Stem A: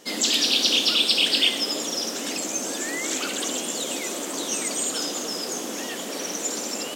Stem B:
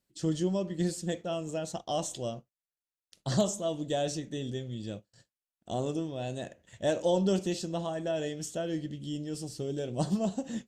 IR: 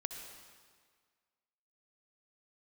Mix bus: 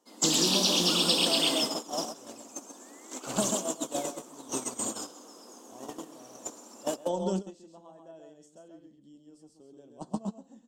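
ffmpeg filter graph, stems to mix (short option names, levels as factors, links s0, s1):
-filter_complex "[0:a]volume=0.631,asplit=3[s0][s1][s2];[s1]volume=0.133[s3];[s2]volume=0.631[s4];[1:a]lowpass=10000,volume=0.841,asplit=2[s5][s6];[s6]volume=0.596[s7];[2:a]atrim=start_sample=2205[s8];[s3][s8]afir=irnorm=-1:irlink=0[s9];[s4][s7]amix=inputs=2:normalize=0,aecho=0:1:134:1[s10];[s0][s5][s9][s10]amix=inputs=4:normalize=0,agate=range=0.0891:threshold=0.0501:ratio=16:detection=peak,equalizer=f=125:t=o:w=1:g=-10,equalizer=f=250:t=o:w=1:g=7,equalizer=f=1000:t=o:w=1:g=11,equalizer=f=2000:t=o:w=1:g=-8,equalizer=f=4000:t=o:w=1:g=-3,equalizer=f=8000:t=o:w=1:g=3,acrossover=split=150|3000[s11][s12][s13];[s12]acompressor=threshold=0.0447:ratio=6[s14];[s11][s14][s13]amix=inputs=3:normalize=0"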